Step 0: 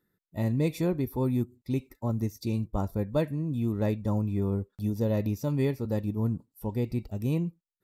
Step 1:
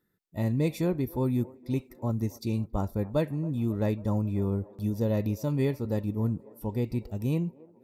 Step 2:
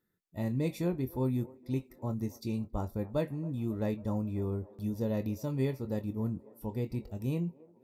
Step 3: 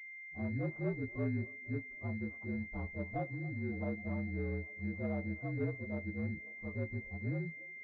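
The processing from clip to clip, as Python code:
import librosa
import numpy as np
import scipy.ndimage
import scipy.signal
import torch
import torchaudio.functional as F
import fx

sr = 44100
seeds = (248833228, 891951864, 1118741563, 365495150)

y1 = fx.echo_wet_bandpass(x, sr, ms=273, feedback_pct=69, hz=630.0, wet_db=-19.5)
y2 = fx.doubler(y1, sr, ms=23.0, db=-10.5)
y2 = y2 * librosa.db_to_amplitude(-5.0)
y3 = fx.partial_stretch(y2, sr, pct=117)
y3 = fx.pwm(y3, sr, carrier_hz=2100.0)
y3 = y3 * librosa.db_to_amplitude(-4.0)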